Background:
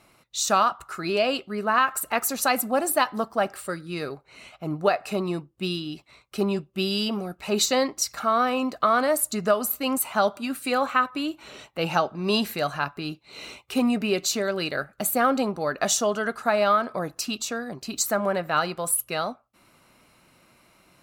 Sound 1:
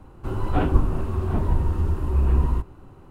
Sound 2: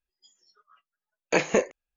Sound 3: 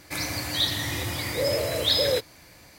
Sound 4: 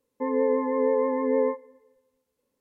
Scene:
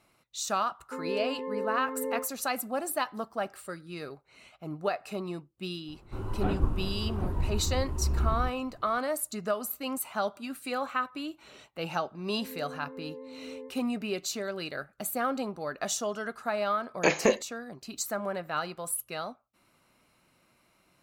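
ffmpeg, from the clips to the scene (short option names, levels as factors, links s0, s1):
-filter_complex "[4:a]asplit=2[s0][s1];[0:a]volume=0.376[s2];[s1]equalizer=f=1200:t=o:w=2.4:g=-14[s3];[s0]atrim=end=2.6,asetpts=PTS-STARTPTS,volume=0.299,afade=t=in:d=0.004:c=hsin,afade=t=out:st=2.596:d=0.004:c=hsin,adelay=710[s4];[1:a]atrim=end=3.1,asetpts=PTS-STARTPTS,volume=0.376,afade=t=in:d=0.004:c=hsin,afade=t=out:st=3.096:d=0.004:c=hsin,adelay=5880[s5];[s3]atrim=end=2.6,asetpts=PTS-STARTPTS,volume=0.2,afade=t=in:d=0.004:c=hsin,afade=t=out:st=2.596:d=0.004:c=hsin,adelay=12180[s6];[2:a]atrim=end=1.96,asetpts=PTS-STARTPTS,volume=0.891,afade=t=in:d=0.004:c=hsin,afade=t=out:st=1.956:d=0.004:c=hsin,adelay=15710[s7];[s2][s4][s5][s6][s7]amix=inputs=5:normalize=0"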